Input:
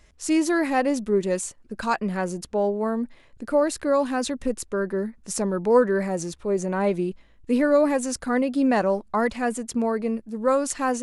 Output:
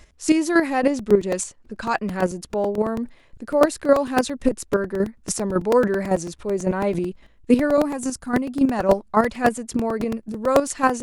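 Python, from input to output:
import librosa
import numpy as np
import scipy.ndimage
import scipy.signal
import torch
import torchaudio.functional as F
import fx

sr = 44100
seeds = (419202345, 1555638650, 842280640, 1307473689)

y = fx.lowpass(x, sr, hz=8100.0, slope=12, at=(0.9, 1.93))
y = fx.chopper(y, sr, hz=3.6, depth_pct=60, duty_pct=15)
y = fx.graphic_eq(y, sr, hz=(500, 2000, 4000), db=(-9, -7, -5), at=(7.77, 8.79))
y = fx.buffer_crackle(y, sr, first_s=0.99, period_s=0.11, block=128, kind='repeat')
y = y * 10.0 ** (8.0 / 20.0)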